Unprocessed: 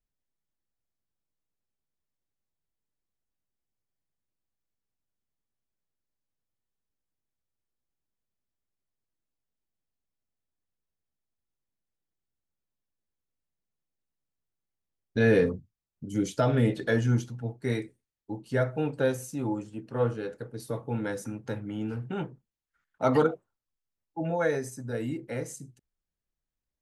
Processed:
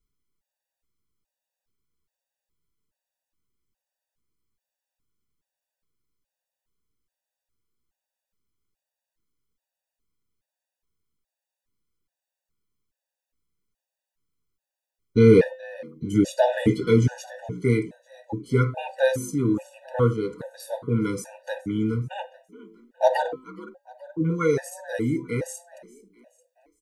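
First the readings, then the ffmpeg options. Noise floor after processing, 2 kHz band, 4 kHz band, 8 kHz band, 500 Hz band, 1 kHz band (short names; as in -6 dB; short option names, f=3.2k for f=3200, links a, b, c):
under -85 dBFS, +1.5 dB, +4.5 dB, +4.5 dB, +5.5 dB, +5.0 dB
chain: -filter_complex "[0:a]bandreject=f=258.6:t=h:w=4,bandreject=f=517.2:t=h:w=4,bandreject=f=775.8:t=h:w=4,bandreject=f=1.0344k:t=h:w=4,bandreject=f=1.293k:t=h:w=4,bandreject=f=1.5516k:t=h:w=4,bandreject=f=1.8102k:t=h:w=4,bandreject=f=2.0688k:t=h:w=4,bandreject=f=2.3274k:t=h:w=4,bandreject=f=2.586k:t=h:w=4,bandreject=f=2.8446k:t=h:w=4,bandreject=f=3.1032k:t=h:w=4,bandreject=f=3.3618k:t=h:w=4,bandreject=f=3.6204k:t=h:w=4,bandreject=f=3.879k:t=h:w=4,bandreject=f=4.1376k:t=h:w=4,bandreject=f=4.3962k:t=h:w=4,bandreject=f=4.6548k:t=h:w=4,asplit=4[a][b][c][d];[b]adelay=422,afreqshift=57,volume=-22dB[e];[c]adelay=844,afreqshift=114,volume=-28dB[f];[d]adelay=1266,afreqshift=171,volume=-34dB[g];[a][e][f][g]amix=inputs=4:normalize=0,afftfilt=real='re*gt(sin(2*PI*1.2*pts/sr)*(1-2*mod(floor(b*sr/1024/490),2)),0)':imag='im*gt(sin(2*PI*1.2*pts/sr)*(1-2*mod(floor(b*sr/1024/490),2)),0)':win_size=1024:overlap=0.75,volume=8.5dB"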